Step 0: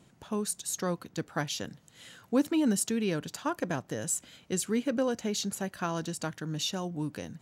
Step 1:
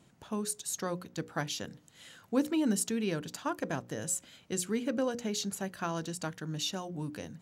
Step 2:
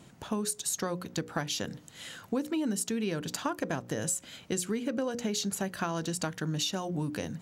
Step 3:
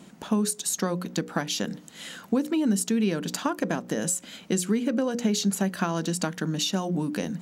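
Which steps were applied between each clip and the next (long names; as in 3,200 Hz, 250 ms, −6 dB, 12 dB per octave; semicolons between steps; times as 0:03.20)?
mains-hum notches 60/120/180/240/300/360/420/480/540 Hz; level −2 dB
downward compressor 6 to 1, threshold −37 dBFS, peak gain reduction 13.5 dB; level +8.5 dB
low shelf with overshoot 150 Hz −7 dB, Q 3; level +4 dB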